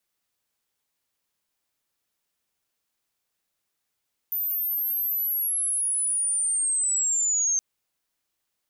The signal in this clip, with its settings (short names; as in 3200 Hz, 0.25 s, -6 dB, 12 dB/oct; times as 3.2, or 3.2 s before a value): chirp linear 14000 Hz -> 6300 Hz -24.5 dBFS -> -20.5 dBFS 3.27 s